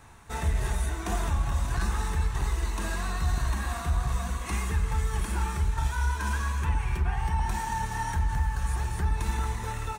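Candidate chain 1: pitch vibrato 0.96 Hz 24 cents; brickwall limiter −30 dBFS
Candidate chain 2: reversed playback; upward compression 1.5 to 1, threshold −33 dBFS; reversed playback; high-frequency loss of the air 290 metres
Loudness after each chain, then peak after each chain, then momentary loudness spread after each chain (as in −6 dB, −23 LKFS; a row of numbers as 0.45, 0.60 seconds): −39.0, −30.5 LKFS; −30.0, −18.0 dBFS; 1, 3 LU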